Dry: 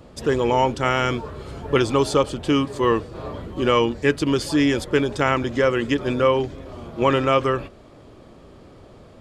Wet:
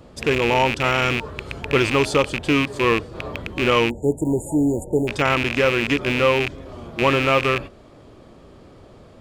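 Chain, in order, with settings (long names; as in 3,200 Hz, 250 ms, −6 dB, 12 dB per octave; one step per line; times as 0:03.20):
loose part that buzzes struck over −29 dBFS, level −11 dBFS
time-frequency box erased 0:03.90–0:05.08, 960–6,700 Hz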